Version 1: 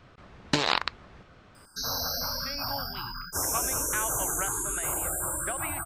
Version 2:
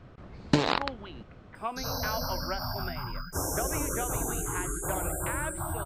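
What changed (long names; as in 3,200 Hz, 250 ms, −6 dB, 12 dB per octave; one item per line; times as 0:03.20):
speech: entry −1.90 s
master: add tilt shelving filter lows +6 dB, about 840 Hz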